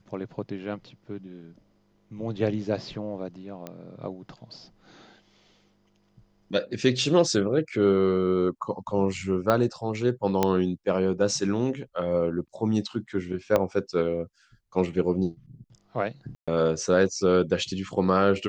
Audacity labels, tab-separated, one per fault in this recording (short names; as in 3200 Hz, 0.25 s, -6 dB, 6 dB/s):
3.670000	3.670000	pop -21 dBFS
9.500000	9.500000	pop -10 dBFS
10.430000	10.430000	pop -8 dBFS
13.560000	13.560000	pop -10 dBFS
16.350000	16.480000	gap 0.126 s